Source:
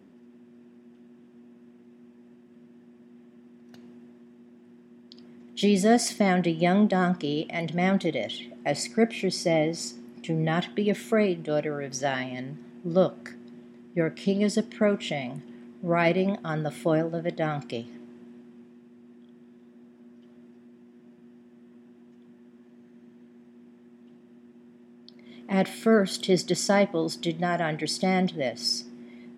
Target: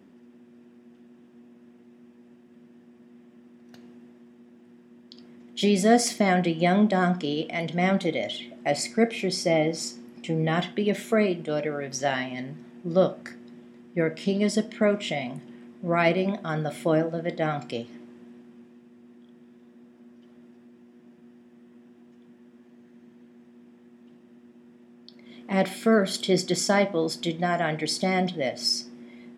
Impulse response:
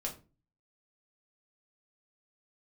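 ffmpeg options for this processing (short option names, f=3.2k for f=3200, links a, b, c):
-filter_complex "[0:a]asplit=2[a][b];[1:a]atrim=start_sample=2205,lowshelf=f=330:g=-11[c];[b][c]afir=irnorm=-1:irlink=0,volume=-6.5dB[d];[a][d]amix=inputs=2:normalize=0,volume=-1dB"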